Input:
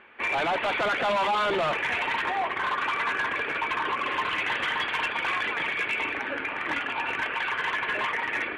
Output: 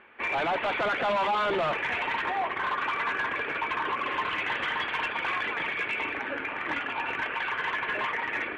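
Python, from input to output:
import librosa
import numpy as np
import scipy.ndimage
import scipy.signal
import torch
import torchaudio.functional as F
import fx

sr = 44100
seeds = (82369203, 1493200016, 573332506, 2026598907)

y = fx.lowpass(x, sr, hz=3500.0, slope=6)
y = y * librosa.db_to_amplitude(-1.0)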